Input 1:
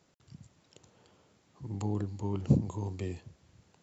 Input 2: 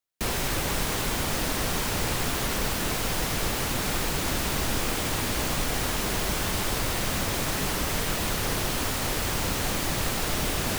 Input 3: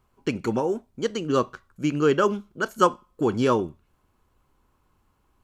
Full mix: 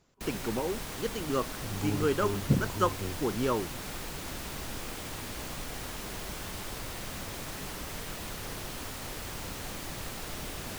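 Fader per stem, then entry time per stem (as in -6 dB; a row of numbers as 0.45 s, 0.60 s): -1.0 dB, -11.5 dB, -8.0 dB; 0.00 s, 0.00 s, 0.00 s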